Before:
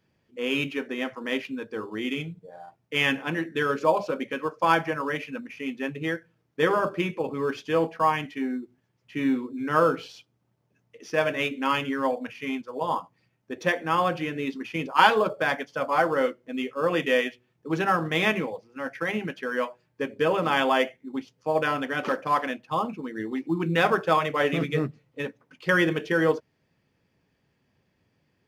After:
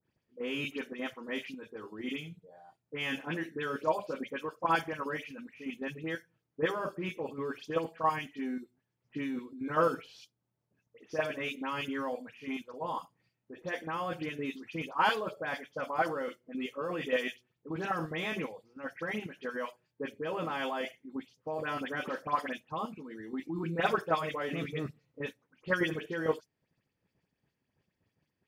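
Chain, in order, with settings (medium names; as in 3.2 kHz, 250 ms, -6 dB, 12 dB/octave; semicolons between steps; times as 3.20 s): level held to a coarse grid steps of 10 dB; phase dispersion highs, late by 76 ms, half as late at 2.7 kHz; trim -4.5 dB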